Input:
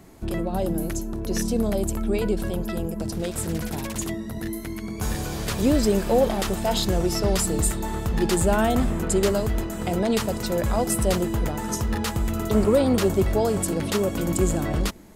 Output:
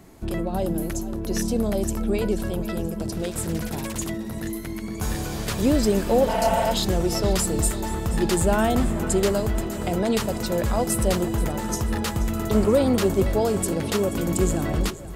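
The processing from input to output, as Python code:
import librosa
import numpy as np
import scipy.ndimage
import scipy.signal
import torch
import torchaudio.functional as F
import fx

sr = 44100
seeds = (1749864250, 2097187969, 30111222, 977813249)

y = fx.echo_split(x, sr, split_hz=300.0, low_ms=308, high_ms=481, feedback_pct=52, wet_db=-15.5)
y = fx.spec_repair(y, sr, seeds[0], start_s=6.31, length_s=0.33, low_hz=200.0, high_hz=4000.0, source='after')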